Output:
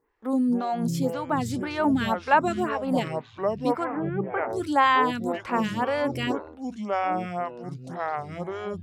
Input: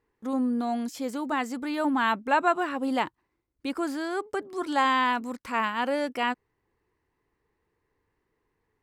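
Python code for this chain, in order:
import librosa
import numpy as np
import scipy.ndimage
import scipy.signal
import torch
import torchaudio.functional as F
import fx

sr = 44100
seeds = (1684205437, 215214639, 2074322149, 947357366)

y = fx.echo_pitch(x, sr, ms=165, semitones=-6, count=3, db_per_echo=-6.0)
y = fx.ellip_lowpass(y, sr, hz=2500.0, order=4, stop_db=50, at=(3.83, 4.48), fade=0.02)
y = fx.stagger_phaser(y, sr, hz=1.9)
y = F.gain(torch.from_numpy(y), 4.5).numpy()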